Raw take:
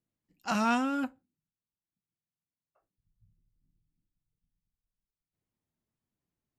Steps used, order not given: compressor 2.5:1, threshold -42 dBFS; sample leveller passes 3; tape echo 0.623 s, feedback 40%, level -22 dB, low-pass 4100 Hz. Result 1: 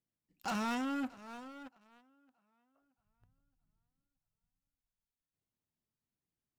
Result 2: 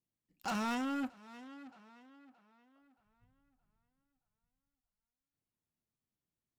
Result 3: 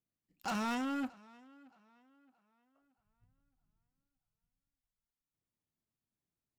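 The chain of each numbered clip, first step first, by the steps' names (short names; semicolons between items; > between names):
tape echo > sample leveller > compressor; sample leveller > tape echo > compressor; sample leveller > compressor > tape echo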